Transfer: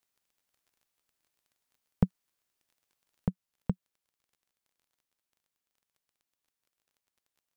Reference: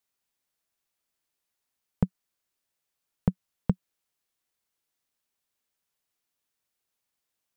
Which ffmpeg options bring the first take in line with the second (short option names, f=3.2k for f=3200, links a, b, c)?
-af "adeclick=t=4,asetnsamples=n=441:p=0,asendcmd='3.26 volume volume 5.5dB',volume=0dB"